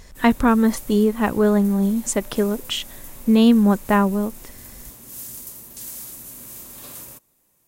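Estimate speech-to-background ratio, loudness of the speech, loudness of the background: 18.5 dB, −19.0 LKFS, −37.5 LKFS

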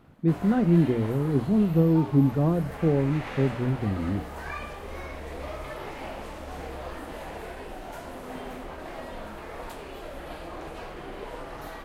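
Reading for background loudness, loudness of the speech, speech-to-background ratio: −39.0 LKFS, −24.5 LKFS, 14.5 dB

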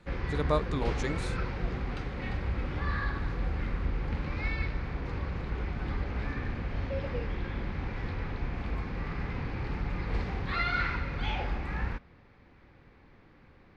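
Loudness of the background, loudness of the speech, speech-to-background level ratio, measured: −34.5 LKFS, −34.0 LKFS, 0.5 dB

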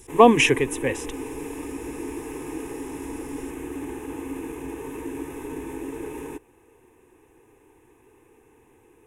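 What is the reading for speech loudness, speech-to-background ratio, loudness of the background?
−19.0 LKFS, 15.5 dB, −34.5 LKFS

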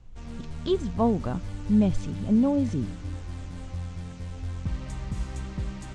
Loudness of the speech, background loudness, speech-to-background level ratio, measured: −26.5 LKFS, −36.5 LKFS, 10.0 dB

